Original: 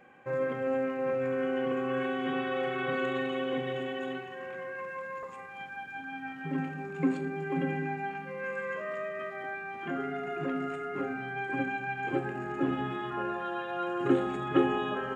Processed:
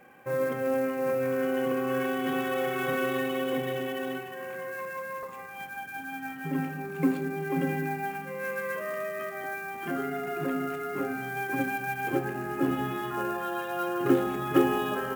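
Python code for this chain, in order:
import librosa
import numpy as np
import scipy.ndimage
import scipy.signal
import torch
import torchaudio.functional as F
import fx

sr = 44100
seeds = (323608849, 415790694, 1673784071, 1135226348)

y = fx.sample_hold(x, sr, seeds[0], rate_hz=16000.0, jitter_pct=20)
y = y * 10.0 ** (2.5 / 20.0)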